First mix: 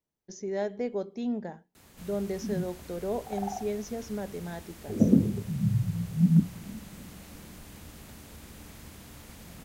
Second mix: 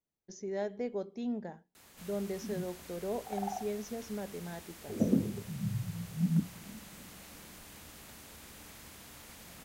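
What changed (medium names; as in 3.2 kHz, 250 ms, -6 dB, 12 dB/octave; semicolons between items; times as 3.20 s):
speech -4.5 dB; background: add bass shelf 380 Hz -10 dB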